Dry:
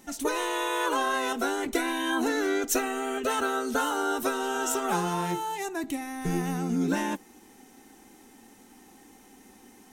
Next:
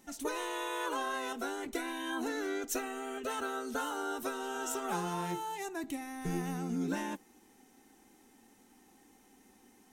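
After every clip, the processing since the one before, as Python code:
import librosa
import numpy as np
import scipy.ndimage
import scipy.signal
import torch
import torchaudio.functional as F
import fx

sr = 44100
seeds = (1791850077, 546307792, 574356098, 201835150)

y = fx.rider(x, sr, range_db=10, speed_s=2.0)
y = y * librosa.db_to_amplitude(-8.5)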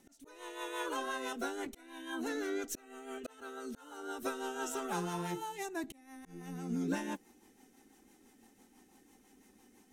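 y = fx.auto_swell(x, sr, attack_ms=545.0)
y = fx.rotary(y, sr, hz=6.0)
y = y * librosa.db_to_amplitude(1.0)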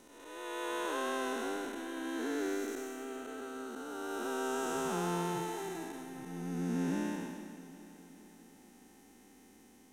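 y = fx.spec_blur(x, sr, span_ms=474.0)
y = fx.echo_feedback(y, sr, ms=408, feedback_pct=55, wet_db=-15)
y = y * librosa.db_to_amplitude(5.5)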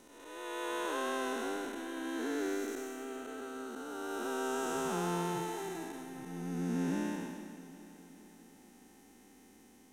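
y = x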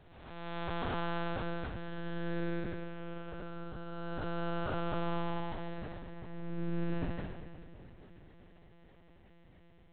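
y = fx.lpc_monotone(x, sr, seeds[0], pitch_hz=170.0, order=8)
y = y * librosa.db_to_amplitude(1.0)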